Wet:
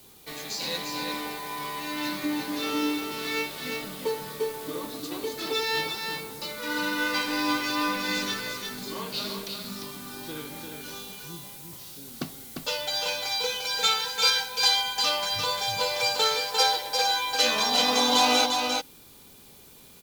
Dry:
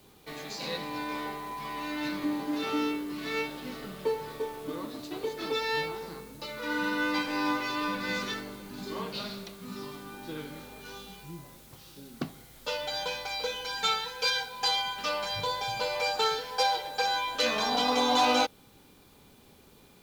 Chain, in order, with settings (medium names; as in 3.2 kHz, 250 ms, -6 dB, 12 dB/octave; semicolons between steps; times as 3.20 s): treble shelf 3.8 kHz +11.5 dB; delay 349 ms -5 dB